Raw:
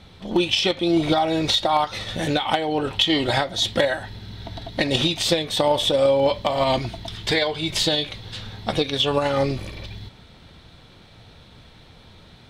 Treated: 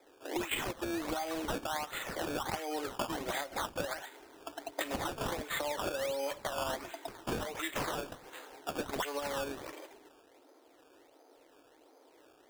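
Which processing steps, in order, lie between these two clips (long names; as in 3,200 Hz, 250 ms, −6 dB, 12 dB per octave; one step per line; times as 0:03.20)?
Butterworth high-pass 270 Hz 96 dB per octave
low-pass that shuts in the quiet parts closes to 630 Hz, open at −18 dBFS
spectral tilt +2 dB per octave
downward compressor 6 to 1, threshold −32 dBFS, peak gain reduction 19 dB
sample-and-hold swept by an LFO 15×, swing 100% 1.4 Hz
level −2 dB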